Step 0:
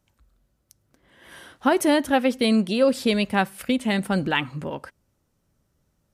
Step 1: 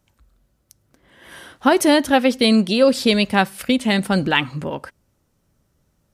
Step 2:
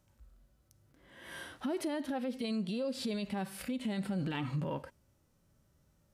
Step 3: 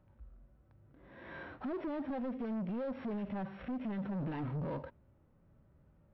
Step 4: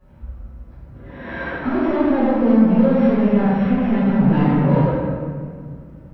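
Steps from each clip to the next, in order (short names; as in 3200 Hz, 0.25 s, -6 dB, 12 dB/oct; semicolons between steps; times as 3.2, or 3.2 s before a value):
dynamic EQ 4700 Hz, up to +5 dB, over -45 dBFS, Q 1.2; gain +4.5 dB
harmonic-percussive split percussive -17 dB; compressor 12:1, threshold -23 dBFS, peak gain reduction 14 dB; limiter -26.5 dBFS, peak gain reduction 11 dB; gain -1 dB
sample sorter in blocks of 8 samples; soft clip -39.5 dBFS, distortion -8 dB; Gaussian blur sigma 3.8 samples; gain +5 dB
reverb RT60 2.0 s, pre-delay 4 ms, DRR -16.5 dB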